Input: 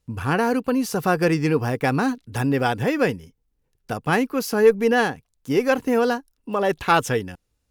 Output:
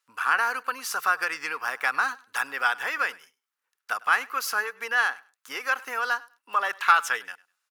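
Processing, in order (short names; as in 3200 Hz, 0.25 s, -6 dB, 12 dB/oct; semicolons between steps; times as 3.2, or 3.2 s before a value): compressor, threshold -19 dBFS, peak gain reduction 9.5 dB; resonant high-pass 1300 Hz, resonance Q 2.7; feedback echo 0.101 s, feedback 18%, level -22.5 dB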